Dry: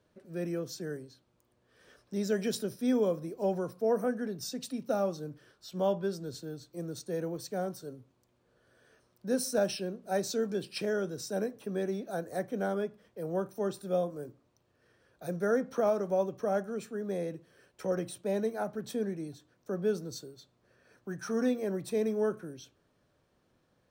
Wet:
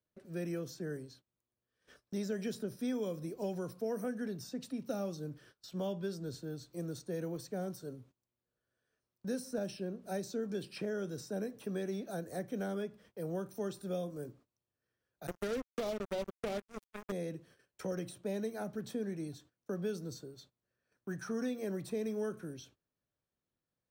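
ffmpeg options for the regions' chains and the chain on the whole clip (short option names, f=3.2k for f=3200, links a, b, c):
-filter_complex "[0:a]asettb=1/sr,asplit=3[a][b][c];[a]atrim=end=15.274[d];[b]atrim=start=15.27:end=17.12,asetpts=PTS-STARTPTS,afade=t=in:d=0.004:c=qsin,afade=t=out:st=1.846:d=0.004:c=qsin,bass=f=250:g=-6,treble=f=4k:g=4,acrusher=bits=4:mix=0:aa=0.5[e];[c]atrim=start=17.116[f];[d][e]acrossfade=d=0.004:c1=hsin:c2=qsin[g];[g][f]acrossfade=d=0.004:c1=qsin:c2=hsin,agate=range=-20dB:threshold=-59dB:ratio=16:detection=peak,equalizer=f=580:w=0.47:g=-3.5,acrossover=split=510|1900[h][i][j];[h]acompressor=threshold=-37dB:ratio=4[k];[i]acompressor=threshold=-48dB:ratio=4[l];[j]acompressor=threshold=-53dB:ratio=4[m];[k][l][m]amix=inputs=3:normalize=0,volume=1.5dB"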